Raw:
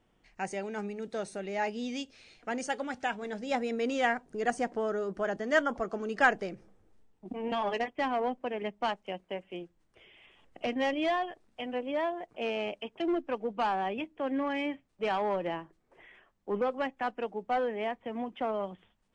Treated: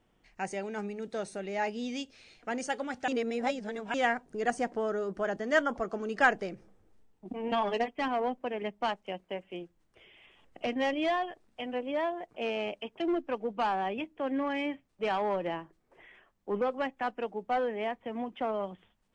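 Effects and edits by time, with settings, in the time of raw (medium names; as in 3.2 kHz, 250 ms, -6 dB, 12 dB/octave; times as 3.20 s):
3.08–3.94 s: reverse
7.52–8.08 s: comb 4.4 ms, depth 45%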